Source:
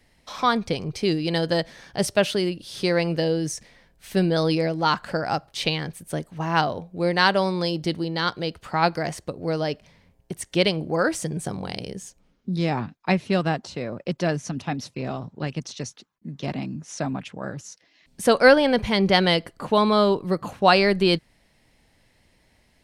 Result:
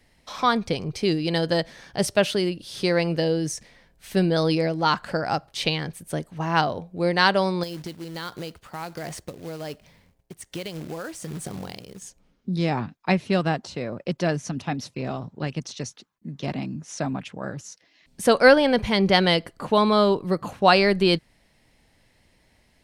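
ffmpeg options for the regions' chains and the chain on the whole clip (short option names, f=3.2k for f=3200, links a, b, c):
-filter_complex "[0:a]asettb=1/sr,asplit=3[a][b][c];[a]atrim=end=7.634[d];[b]atrim=start=7.63:end=12.02,asetpts=PTS-STARTPTS,afade=t=in:d=0.004:c=qsin,afade=t=out:st=4.386:d=0.004:c=qsin,tremolo=f=1.3:d=0.68,acrusher=bits=3:mode=log:mix=0:aa=0.000001,acompressor=threshold=-28dB:ratio=10:attack=3.2:release=140:knee=1:detection=peak[e];[c]atrim=start=12.016[f];[d][e]acrossfade=d=0.004:c1=hsin:c2=qsin[g];[g][f]acrossfade=d=0.004:c1=qsin:c2=hsin"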